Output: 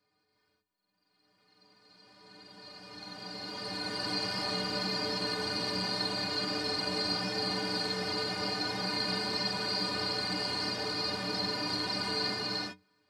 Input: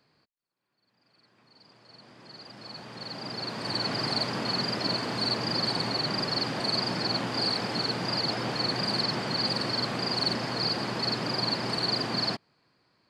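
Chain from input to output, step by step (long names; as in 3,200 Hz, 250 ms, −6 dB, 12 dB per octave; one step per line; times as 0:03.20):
high-shelf EQ 9,100 Hz +6 dB
stiff-string resonator 89 Hz, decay 0.32 s, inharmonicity 0.03
reverb whose tail is shaped and stops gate 390 ms rising, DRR −5 dB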